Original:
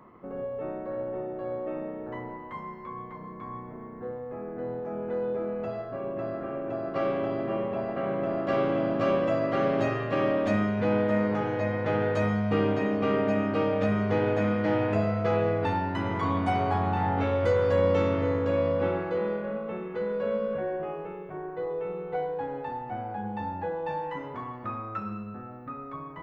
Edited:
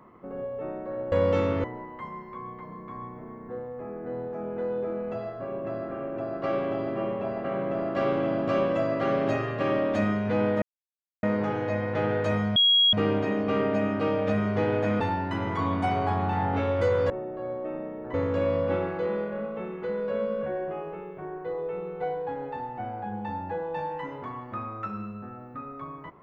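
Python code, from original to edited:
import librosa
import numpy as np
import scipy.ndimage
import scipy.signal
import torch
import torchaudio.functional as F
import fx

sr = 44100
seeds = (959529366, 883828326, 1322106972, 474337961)

y = fx.edit(x, sr, fx.swap(start_s=1.12, length_s=1.04, other_s=17.74, other_length_s=0.52),
    fx.insert_silence(at_s=11.14, length_s=0.61),
    fx.insert_tone(at_s=12.47, length_s=0.37, hz=3300.0, db=-16.5),
    fx.cut(start_s=14.54, length_s=1.1), tone=tone)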